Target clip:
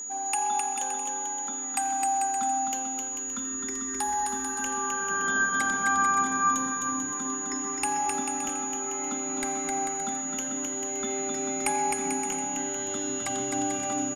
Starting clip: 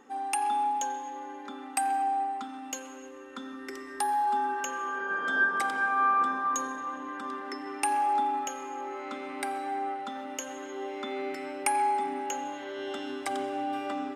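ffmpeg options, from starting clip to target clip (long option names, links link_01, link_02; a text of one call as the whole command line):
ffmpeg -i in.wav -af "asubboost=boost=10:cutoff=150,aeval=exprs='val(0)+0.02*sin(2*PI*6800*n/s)':channel_layout=same,aecho=1:1:260|442|569.4|658.6|721:0.631|0.398|0.251|0.158|0.1" out.wav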